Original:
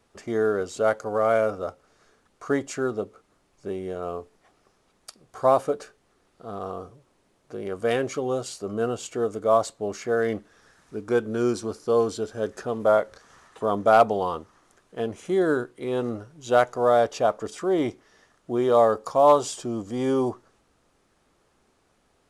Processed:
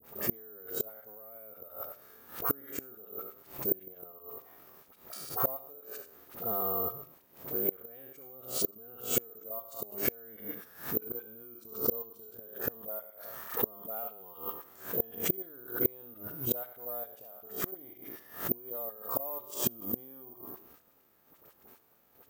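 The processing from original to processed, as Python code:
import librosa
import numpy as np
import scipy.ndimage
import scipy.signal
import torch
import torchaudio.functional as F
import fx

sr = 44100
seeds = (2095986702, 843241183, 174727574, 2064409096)

y = fx.spec_trails(x, sr, decay_s=0.54)
y = fx.highpass(y, sr, hz=130.0, slope=6)
y = fx.hum_notches(y, sr, base_hz=50, count=8)
y = fx.dynamic_eq(y, sr, hz=1100.0, q=1.1, threshold_db=-29.0, ratio=4.0, max_db=-3)
y = fx.hpss(y, sr, part='harmonic', gain_db=9)
y = fx.high_shelf(y, sr, hz=3800.0, db=-6.5)
y = fx.level_steps(y, sr, step_db=12)
y = fx.dispersion(y, sr, late='highs', ms=46.0, hz=1100.0)
y = fx.gate_flip(y, sr, shuts_db=-20.0, range_db=-30)
y = (np.kron(y[::3], np.eye(3)[0]) * 3)[:len(y)]
y = fx.pre_swell(y, sr, db_per_s=130.0)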